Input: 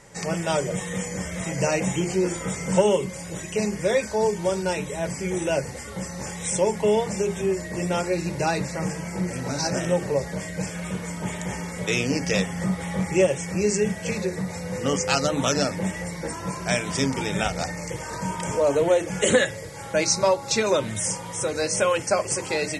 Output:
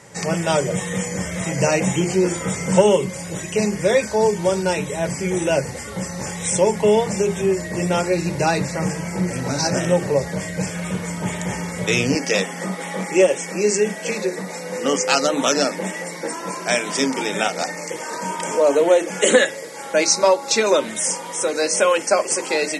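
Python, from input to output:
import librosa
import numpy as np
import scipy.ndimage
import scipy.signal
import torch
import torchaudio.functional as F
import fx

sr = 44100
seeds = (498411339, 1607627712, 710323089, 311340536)

y = fx.highpass(x, sr, hz=fx.steps((0.0, 74.0), (12.15, 230.0)), slope=24)
y = y * librosa.db_to_amplitude(5.0)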